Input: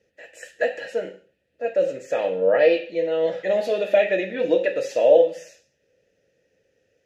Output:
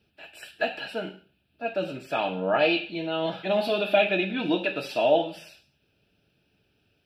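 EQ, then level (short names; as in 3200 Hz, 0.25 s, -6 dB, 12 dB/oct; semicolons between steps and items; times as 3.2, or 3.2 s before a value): fixed phaser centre 1900 Hz, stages 6; +7.0 dB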